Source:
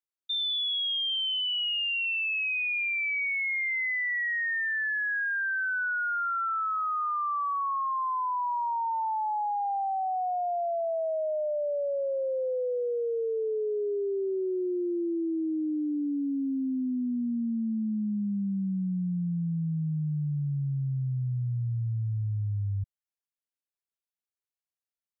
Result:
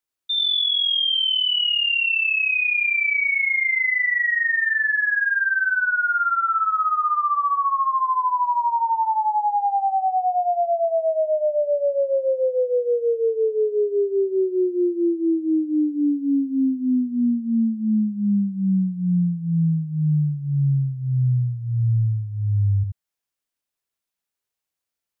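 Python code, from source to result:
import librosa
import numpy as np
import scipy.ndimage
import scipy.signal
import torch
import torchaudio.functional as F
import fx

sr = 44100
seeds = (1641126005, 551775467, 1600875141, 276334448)

y = x + 10.0 ** (-4.0 / 20.0) * np.pad(x, (int(79 * sr / 1000.0), 0))[:len(x)]
y = y * librosa.db_to_amplitude(7.0)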